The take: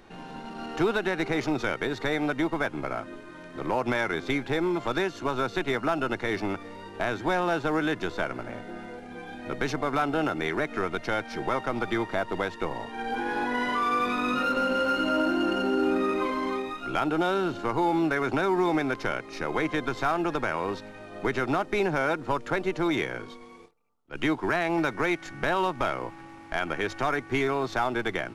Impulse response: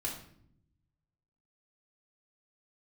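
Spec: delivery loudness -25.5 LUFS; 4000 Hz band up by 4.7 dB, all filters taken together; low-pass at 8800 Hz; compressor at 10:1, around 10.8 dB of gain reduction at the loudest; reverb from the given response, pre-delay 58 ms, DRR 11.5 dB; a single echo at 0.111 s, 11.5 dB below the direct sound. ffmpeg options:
-filter_complex "[0:a]lowpass=8.8k,equalizer=f=4k:t=o:g=6,acompressor=threshold=-32dB:ratio=10,aecho=1:1:111:0.266,asplit=2[a][b];[1:a]atrim=start_sample=2205,adelay=58[c];[b][c]afir=irnorm=-1:irlink=0,volume=-13.5dB[d];[a][d]amix=inputs=2:normalize=0,volume=10.5dB"

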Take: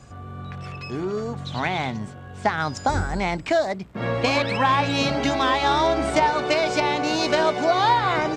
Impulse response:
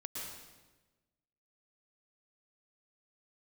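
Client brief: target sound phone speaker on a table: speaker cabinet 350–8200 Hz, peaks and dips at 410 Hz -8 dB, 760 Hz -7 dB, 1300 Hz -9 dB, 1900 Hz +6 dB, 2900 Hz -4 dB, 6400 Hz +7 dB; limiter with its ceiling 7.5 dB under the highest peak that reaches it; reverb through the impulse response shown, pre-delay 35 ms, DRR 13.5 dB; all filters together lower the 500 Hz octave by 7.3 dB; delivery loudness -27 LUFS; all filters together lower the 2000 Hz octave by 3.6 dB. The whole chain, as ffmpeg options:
-filter_complex "[0:a]equalizer=f=500:t=o:g=-4.5,equalizer=f=2k:t=o:g=-5,alimiter=limit=-17dB:level=0:latency=1,asplit=2[a][b];[1:a]atrim=start_sample=2205,adelay=35[c];[b][c]afir=irnorm=-1:irlink=0,volume=-13dB[d];[a][d]amix=inputs=2:normalize=0,highpass=f=350:w=0.5412,highpass=f=350:w=1.3066,equalizer=f=410:t=q:w=4:g=-8,equalizer=f=760:t=q:w=4:g=-7,equalizer=f=1.3k:t=q:w=4:g=-9,equalizer=f=1.9k:t=q:w=4:g=6,equalizer=f=2.9k:t=q:w=4:g=-4,equalizer=f=6.4k:t=q:w=4:g=7,lowpass=f=8.2k:w=0.5412,lowpass=f=8.2k:w=1.3066,volume=3.5dB"

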